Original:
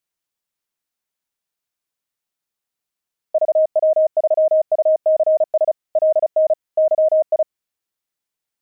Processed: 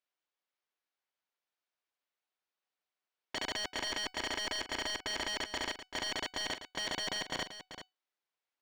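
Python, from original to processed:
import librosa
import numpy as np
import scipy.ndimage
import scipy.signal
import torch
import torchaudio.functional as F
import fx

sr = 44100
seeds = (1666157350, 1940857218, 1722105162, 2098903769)

p1 = scipy.signal.sosfilt(scipy.signal.butter(2, 380.0, 'highpass', fs=sr, output='sos'), x)
p2 = fx.level_steps(p1, sr, step_db=16)
p3 = p1 + F.gain(torch.from_numpy(p2), -1.5).numpy()
p4 = (np.mod(10.0 ** (21.0 / 20.0) * p3 + 1.0, 2.0) - 1.0) / 10.0 ** (21.0 / 20.0)
p5 = fx.air_absorb(p4, sr, metres=170.0)
p6 = fx.comb_fb(p5, sr, f0_hz=750.0, decay_s=0.21, harmonics='all', damping=0.0, mix_pct=50)
p7 = p6 + fx.echo_single(p6, sr, ms=387, db=-11.0, dry=0)
y = F.gain(torch.from_numpy(p7), 2.0).numpy()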